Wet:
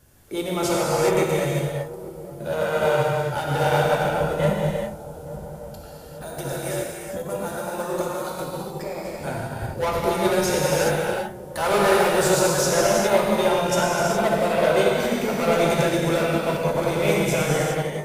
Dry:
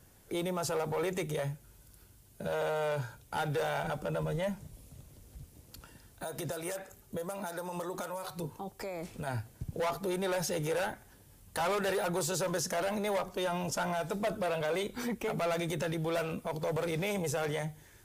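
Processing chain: on a send: dark delay 0.86 s, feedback 62%, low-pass 850 Hz, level -10.5 dB; on the sum: non-linear reverb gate 0.44 s flat, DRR -5 dB; upward expander 1.5:1, over -36 dBFS; gain +8.5 dB

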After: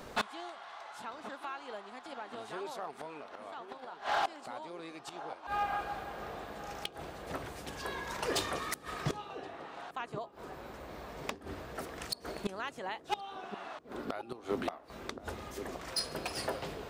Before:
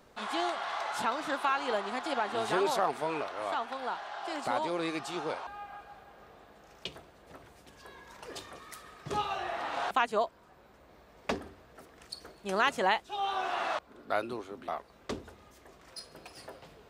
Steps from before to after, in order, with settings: flipped gate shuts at -29 dBFS, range -24 dB; narrowing echo 1.073 s, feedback 59%, band-pass 310 Hz, level -9.5 dB; hard clip -36.5 dBFS, distortion -13 dB; gain +11.5 dB

